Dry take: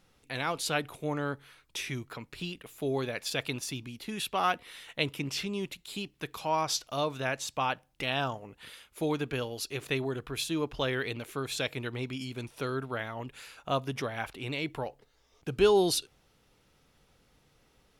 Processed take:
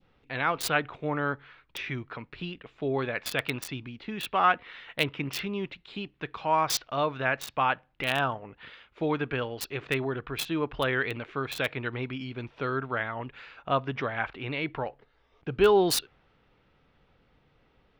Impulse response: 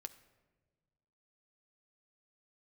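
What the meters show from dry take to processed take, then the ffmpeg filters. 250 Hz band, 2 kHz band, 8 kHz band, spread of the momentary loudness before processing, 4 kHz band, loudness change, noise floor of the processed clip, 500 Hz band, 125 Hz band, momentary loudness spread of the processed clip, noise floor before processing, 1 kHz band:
+1.5 dB, +5.5 dB, 0.0 dB, 10 LU, 0.0 dB, +3.0 dB, -67 dBFS, +2.0 dB, +1.5 dB, 14 LU, -67 dBFS, +5.0 dB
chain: -filter_complex "[0:a]adynamicequalizer=threshold=0.00708:dfrequency=1500:dqfactor=0.91:tfrequency=1500:tqfactor=0.91:attack=5:release=100:ratio=0.375:range=3:mode=boostabove:tftype=bell,acrossover=split=3700[a][b];[b]acrusher=bits=4:mix=0:aa=0.000001[c];[a][c]amix=inputs=2:normalize=0,volume=1.5dB"

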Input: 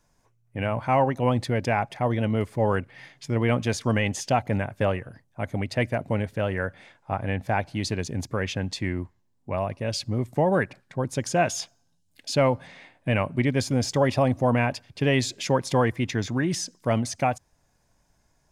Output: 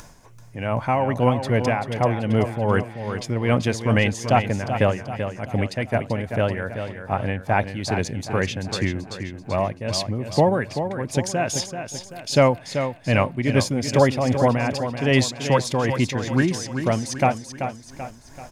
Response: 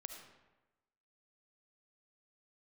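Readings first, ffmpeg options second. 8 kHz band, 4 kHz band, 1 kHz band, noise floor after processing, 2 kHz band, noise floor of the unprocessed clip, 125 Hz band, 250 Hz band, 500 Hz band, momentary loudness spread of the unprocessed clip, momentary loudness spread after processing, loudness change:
+3.5 dB, +4.0 dB, +3.5 dB, -44 dBFS, +3.5 dB, -68 dBFS, +3.5 dB, +3.5 dB, +3.5 dB, 10 LU, 10 LU, +3.0 dB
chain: -af "acompressor=mode=upward:threshold=-35dB:ratio=2.5,tremolo=f=2.5:d=0.58,aecho=1:1:385|770|1155|1540|1925:0.376|0.177|0.083|0.039|0.0183,volume=5.5dB"

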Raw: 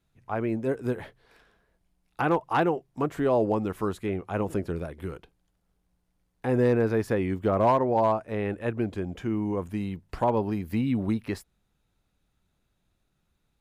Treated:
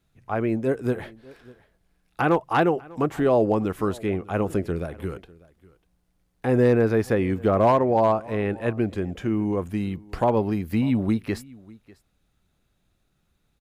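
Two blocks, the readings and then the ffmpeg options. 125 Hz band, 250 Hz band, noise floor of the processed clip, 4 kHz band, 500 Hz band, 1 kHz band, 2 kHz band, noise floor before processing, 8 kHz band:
+4.0 dB, +4.0 dB, -70 dBFS, +4.0 dB, +4.0 dB, +2.5 dB, +4.0 dB, -75 dBFS, n/a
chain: -af "equalizer=f=940:w=7.8:g=-4.5,aecho=1:1:596:0.0708,volume=4dB"

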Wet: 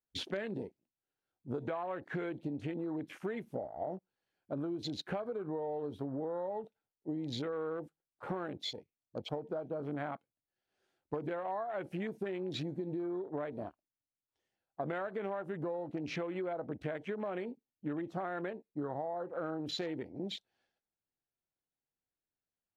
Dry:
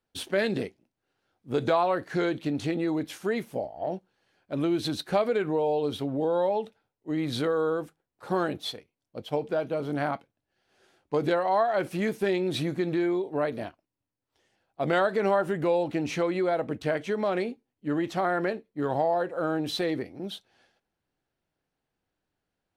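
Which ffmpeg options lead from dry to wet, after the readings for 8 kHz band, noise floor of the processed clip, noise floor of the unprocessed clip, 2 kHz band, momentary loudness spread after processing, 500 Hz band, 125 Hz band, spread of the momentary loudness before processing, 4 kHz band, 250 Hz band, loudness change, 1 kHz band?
under -10 dB, under -85 dBFS, -85 dBFS, -12.0 dB, 6 LU, -11.5 dB, -8.5 dB, 10 LU, -7.5 dB, -10.0 dB, -11.0 dB, -12.5 dB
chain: -af "acompressor=threshold=-35dB:ratio=8,afwtdn=0.00398"

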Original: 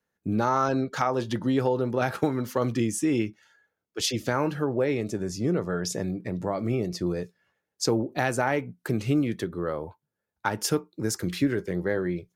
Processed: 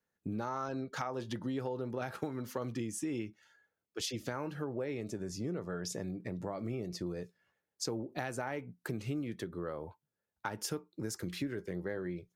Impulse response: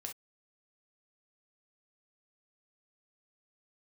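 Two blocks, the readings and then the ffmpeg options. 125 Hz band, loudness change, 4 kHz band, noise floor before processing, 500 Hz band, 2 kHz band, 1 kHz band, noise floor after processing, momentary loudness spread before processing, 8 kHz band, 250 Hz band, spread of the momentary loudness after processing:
-11.0 dB, -11.5 dB, -10.0 dB, -84 dBFS, -12.0 dB, -11.5 dB, -12.5 dB, under -85 dBFS, 6 LU, -9.5 dB, -11.5 dB, 4 LU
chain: -af "acompressor=threshold=-32dB:ratio=2.5,volume=-5dB"

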